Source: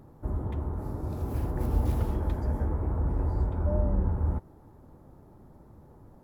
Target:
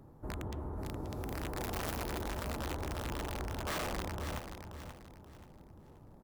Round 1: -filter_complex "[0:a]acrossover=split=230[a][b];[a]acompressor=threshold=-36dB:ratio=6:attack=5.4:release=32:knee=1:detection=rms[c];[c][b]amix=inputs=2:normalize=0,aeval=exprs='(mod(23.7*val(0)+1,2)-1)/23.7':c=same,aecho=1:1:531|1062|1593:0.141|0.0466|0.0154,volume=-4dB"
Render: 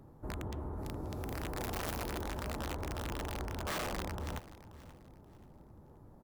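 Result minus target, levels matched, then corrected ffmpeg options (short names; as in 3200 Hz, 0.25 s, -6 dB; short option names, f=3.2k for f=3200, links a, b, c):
echo-to-direct -8 dB
-filter_complex "[0:a]acrossover=split=230[a][b];[a]acompressor=threshold=-36dB:ratio=6:attack=5.4:release=32:knee=1:detection=rms[c];[c][b]amix=inputs=2:normalize=0,aeval=exprs='(mod(23.7*val(0)+1,2)-1)/23.7':c=same,aecho=1:1:531|1062|1593|2124:0.376|0.124|0.0409|0.0135,volume=-4dB"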